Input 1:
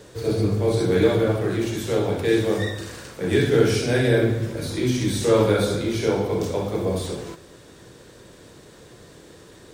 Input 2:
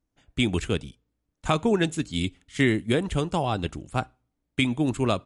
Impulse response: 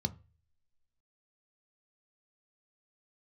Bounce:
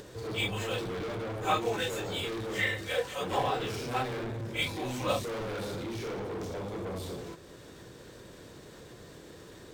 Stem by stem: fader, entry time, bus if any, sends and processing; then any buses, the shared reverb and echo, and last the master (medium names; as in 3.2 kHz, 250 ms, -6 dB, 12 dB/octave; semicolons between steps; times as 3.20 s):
-5.5 dB, 0.00 s, no send, saturation -28.5 dBFS, distortion -5 dB
-4.0 dB, 0.00 s, no send, phase randomisation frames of 100 ms; steep high-pass 460 Hz 96 dB/octave; comb 3.9 ms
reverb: none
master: upward compressor, threshold -43 dBFS; decimation joined by straight lines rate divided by 2×